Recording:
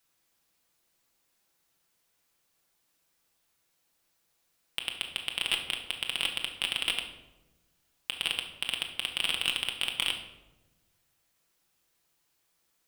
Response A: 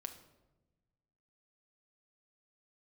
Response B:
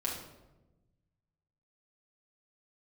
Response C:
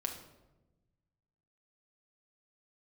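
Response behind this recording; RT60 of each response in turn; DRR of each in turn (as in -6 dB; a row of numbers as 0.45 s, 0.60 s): C; 1.1 s, 1.1 s, 1.1 s; 6.0 dB, -4.5 dB, 2.0 dB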